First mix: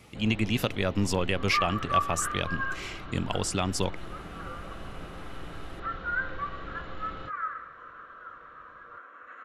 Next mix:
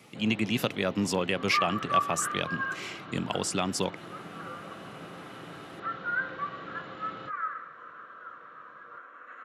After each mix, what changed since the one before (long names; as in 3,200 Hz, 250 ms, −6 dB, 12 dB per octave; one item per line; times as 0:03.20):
master: add high-pass filter 130 Hz 24 dB per octave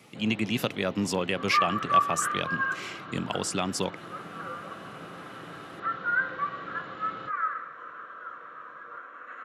second sound +4.0 dB